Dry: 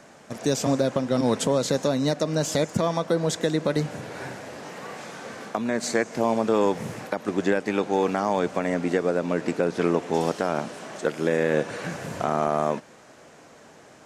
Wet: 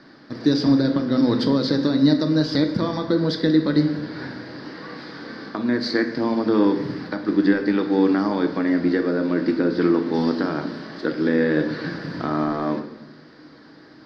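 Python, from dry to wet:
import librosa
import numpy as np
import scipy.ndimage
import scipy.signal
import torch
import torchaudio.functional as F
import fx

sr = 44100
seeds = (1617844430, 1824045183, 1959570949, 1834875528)

y = fx.curve_eq(x, sr, hz=(200.0, 290.0, 430.0, 690.0, 990.0, 1800.0, 2600.0, 4800.0, 7000.0, 11000.0), db=(0, 10, -1, -8, -2, 3, -8, 9, -30, -25))
y = fx.room_shoebox(y, sr, seeds[0], volume_m3=270.0, walls='mixed', distance_m=0.61)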